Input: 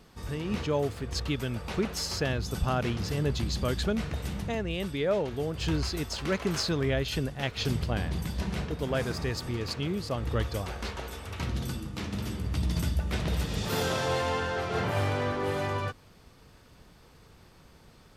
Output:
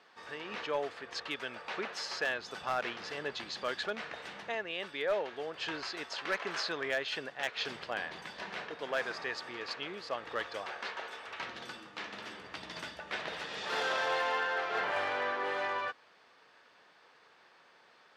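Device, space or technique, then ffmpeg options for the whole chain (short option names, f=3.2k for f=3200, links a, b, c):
megaphone: -af "highpass=640,lowpass=3.8k,equalizer=f=1.7k:t=o:w=0.27:g=5,asoftclip=type=hard:threshold=-24.5dB"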